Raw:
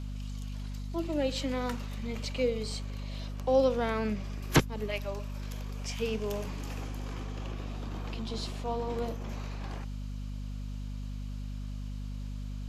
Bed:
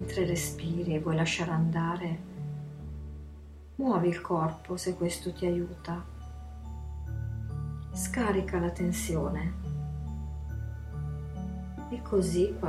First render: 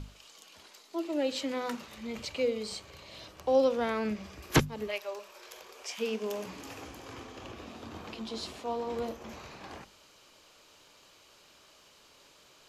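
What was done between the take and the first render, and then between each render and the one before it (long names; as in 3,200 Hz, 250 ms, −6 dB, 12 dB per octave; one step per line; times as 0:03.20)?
mains-hum notches 50/100/150/200/250 Hz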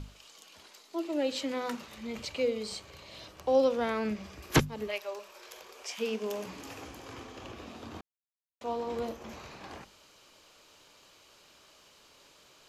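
0:08.01–0:08.61: silence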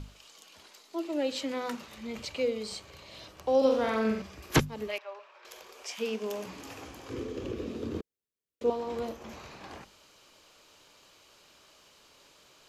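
0:03.57–0:04.22: flutter between parallel walls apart 7.8 metres, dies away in 0.62 s
0:04.98–0:05.45: band-pass filter 680–2,400 Hz
0:07.10–0:08.70: low shelf with overshoot 580 Hz +8 dB, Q 3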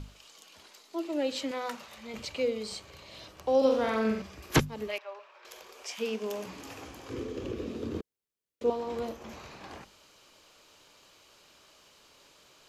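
0:01.51–0:02.14: low shelf with overshoot 460 Hz −6 dB, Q 1.5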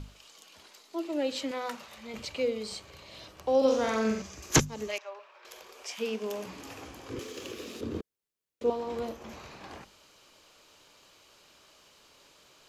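0:03.68–0:05.09: parametric band 6,500 Hz +14 dB 0.56 octaves
0:07.19–0:07.81: spectral tilt +4 dB per octave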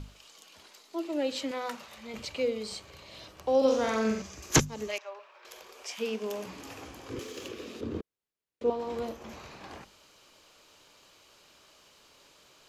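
0:07.48–0:08.80: high-shelf EQ 5,500 Hz −9 dB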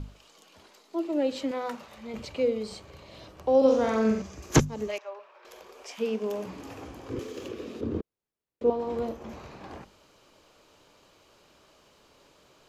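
tilt shelving filter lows +5 dB, about 1,300 Hz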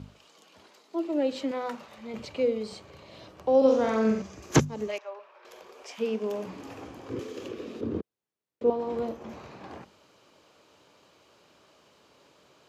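high-pass filter 95 Hz 12 dB per octave
high-shelf EQ 8,300 Hz −6 dB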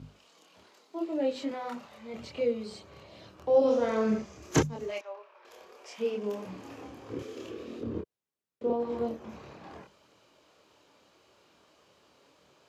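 multi-voice chorus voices 2, 0.84 Hz, delay 27 ms, depth 2.2 ms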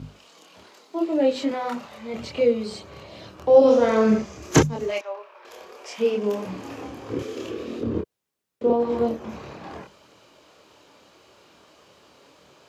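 level +9 dB
brickwall limiter −3 dBFS, peak gain reduction 1.5 dB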